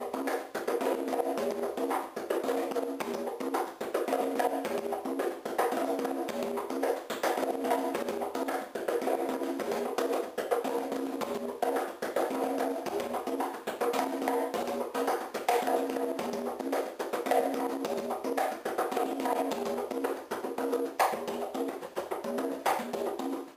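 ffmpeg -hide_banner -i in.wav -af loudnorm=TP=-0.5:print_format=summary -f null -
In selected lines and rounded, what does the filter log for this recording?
Input Integrated:    -32.5 LUFS
Input True Peak:     -12.1 dBTP
Input LRA:             1.3 LU
Input Threshold:     -42.5 LUFS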